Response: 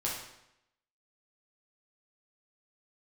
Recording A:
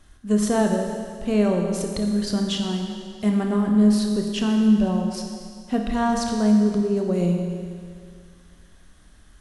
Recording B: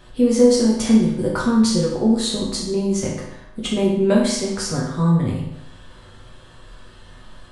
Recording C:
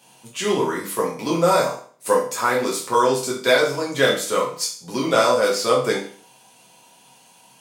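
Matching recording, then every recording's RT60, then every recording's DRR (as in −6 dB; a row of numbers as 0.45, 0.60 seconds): B; 2.1, 0.80, 0.45 seconds; 2.0, −5.0, −4.5 decibels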